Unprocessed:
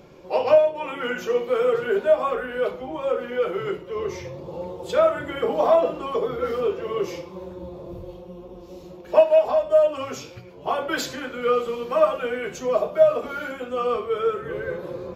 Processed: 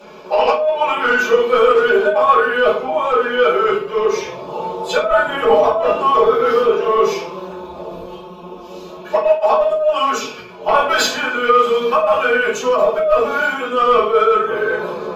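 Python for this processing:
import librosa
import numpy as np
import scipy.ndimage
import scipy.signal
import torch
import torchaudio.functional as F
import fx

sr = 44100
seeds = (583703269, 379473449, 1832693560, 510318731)

y = fx.highpass(x, sr, hz=1200.0, slope=6)
y = fx.high_shelf(y, sr, hz=5400.0, db=-11.0)
y = fx.notch(y, sr, hz=2000.0, q=6.3)
y = y + 0.77 * np.pad(y, (int(4.7 * sr / 1000.0), 0))[:len(y)]
y = fx.over_compress(y, sr, threshold_db=-27.0, ratio=-1.0)
y = fx.fold_sine(y, sr, drive_db=4, ceiling_db=-12.5)
y = fx.room_shoebox(y, sr, seeds[0], volume_m3=160.0, walls='furnished', distance_m=4.8)
y = F.gain(torch.from_numpy(y), -4.0).numpy()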